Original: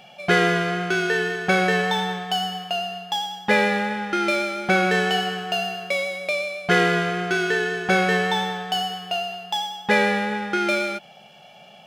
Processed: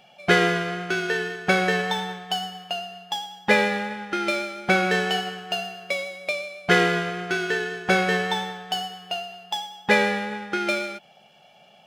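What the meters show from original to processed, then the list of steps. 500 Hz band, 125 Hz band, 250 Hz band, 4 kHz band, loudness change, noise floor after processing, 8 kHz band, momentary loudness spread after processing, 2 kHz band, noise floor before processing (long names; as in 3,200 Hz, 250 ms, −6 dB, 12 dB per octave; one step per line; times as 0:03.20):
−2.0 dB, −2.5 dB, −2.5 dB, −2.0 dB, −2.0 dB, −54 dBFS, −1.5 dB, 11 LU, −1.5 dB, −48 dBFS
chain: harmonic and percussive parts rebalanced percussive +4 dB
expander for the loud parts 1.5 to 1, over −30 dBFS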